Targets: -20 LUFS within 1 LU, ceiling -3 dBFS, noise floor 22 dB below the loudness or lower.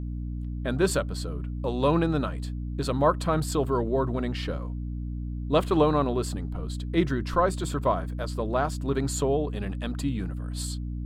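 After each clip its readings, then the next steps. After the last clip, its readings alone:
hum 60 Hz; highest harmonic 300 Hz; hum level -30 dBFS; loudness -28.0 LUFS; peak level -9.0 dBFS; loudness target -20.0 LUFS
-> hum notches 60/120/180/240/300 Hz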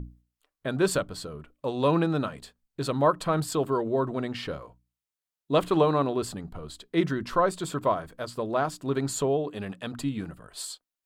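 hum not found; loudness -28.0 LUFS; peak level -9.5 dBFS; loudness target -20.0 LUFS
-> trim +8 dB; peak limiter -3 dBFS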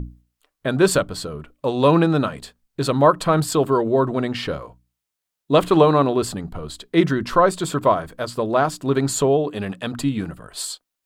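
loudness -20.0 LUFS; peak level -3.0 dBFS; noise floor -83 dBFS

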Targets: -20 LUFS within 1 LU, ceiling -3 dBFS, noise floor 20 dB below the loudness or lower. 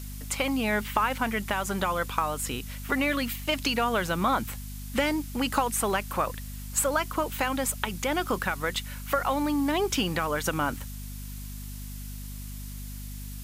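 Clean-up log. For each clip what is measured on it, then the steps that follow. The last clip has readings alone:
hum 50 Hz; highest harmonic 250 Hz; hum level -36 dBFS; noise floor -38 dBFS; noise floor target -48 dBFS; loudness -28.0 LUFS; peak level -9.0 dBFS; loudness target -20.0 LUFS
-> de-hum 50 Hz, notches 5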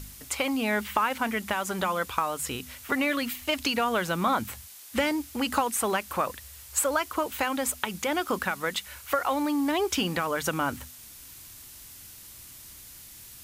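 hum not found; noise floor -47 dBFS; noise floor target -48 dBFS
-> noise print and reduce 6 dB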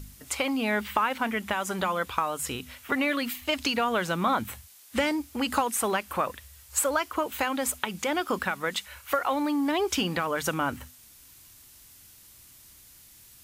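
noise floor -53 dBFS; loudness -28.0 LUFS; peak level -8.5 dBFS; loudness target -20.0 LUFS
-> trim +8 dB; peak limiter -3 dBFS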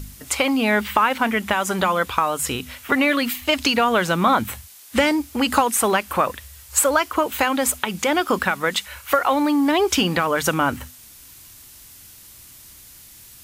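loudness -20.0 LUFS; peak level -3.0 dBFS; noise floor -45 dBFS

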